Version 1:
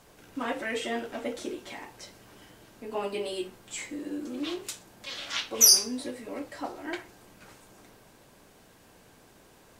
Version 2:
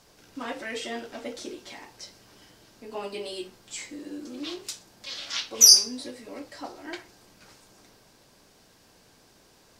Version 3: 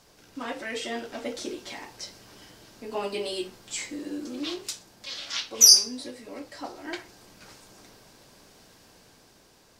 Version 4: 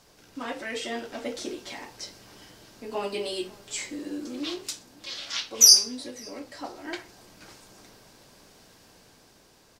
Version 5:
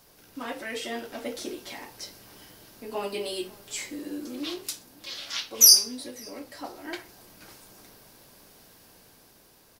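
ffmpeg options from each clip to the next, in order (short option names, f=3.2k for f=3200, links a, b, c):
-af "equalizer=f=5k:w=1.5:g=9,volume=-3dB"
-af "dynaudnorm=f=250:g=9:m=4dB"
-filter_complex "[0:a]asplit=2[a][b];[b]adelay=548.1,volume=-23dB,highshelf=f=4k:g=-12.3[c];[a][c]amix=inputs=2:normalize=0"
-af "aexciter=amount=2.3:drive=8.5:freq=10k,volume=-1dB"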